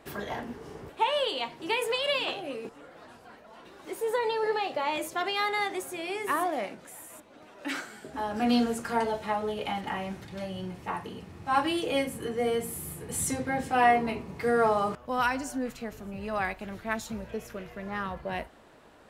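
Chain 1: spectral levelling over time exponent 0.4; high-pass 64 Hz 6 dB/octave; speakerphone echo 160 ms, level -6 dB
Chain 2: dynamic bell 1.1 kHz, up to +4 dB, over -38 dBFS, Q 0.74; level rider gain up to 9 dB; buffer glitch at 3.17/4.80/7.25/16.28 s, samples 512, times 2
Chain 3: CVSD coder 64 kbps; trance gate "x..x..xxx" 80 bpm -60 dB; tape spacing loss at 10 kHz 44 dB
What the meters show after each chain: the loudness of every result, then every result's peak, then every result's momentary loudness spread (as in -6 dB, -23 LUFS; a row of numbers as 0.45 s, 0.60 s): -22.0 LUFS, -20.0 LUFS, -36.0 LUFS; -5.0 dBFS, -2.0 dBFS, -15.0 dBFS; 6 LU, 15 LU, 20 LU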